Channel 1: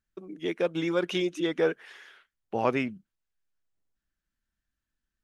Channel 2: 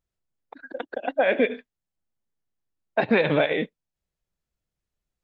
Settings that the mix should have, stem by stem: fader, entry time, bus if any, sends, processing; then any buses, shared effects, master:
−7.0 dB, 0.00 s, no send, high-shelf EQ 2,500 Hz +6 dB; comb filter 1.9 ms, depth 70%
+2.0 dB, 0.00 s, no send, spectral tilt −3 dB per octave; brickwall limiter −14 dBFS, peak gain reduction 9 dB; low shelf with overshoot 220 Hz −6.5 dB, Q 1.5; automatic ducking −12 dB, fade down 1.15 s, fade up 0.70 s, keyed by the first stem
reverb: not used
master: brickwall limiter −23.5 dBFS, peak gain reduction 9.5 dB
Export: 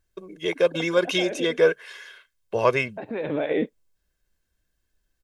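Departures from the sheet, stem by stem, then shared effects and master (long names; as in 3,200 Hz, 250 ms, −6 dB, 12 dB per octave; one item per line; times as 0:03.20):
stem 1 −7.0 dB → +3.0 dB
master: missing brickwall limiter −23.5 dBFS, peak gain reduction 9.5 dB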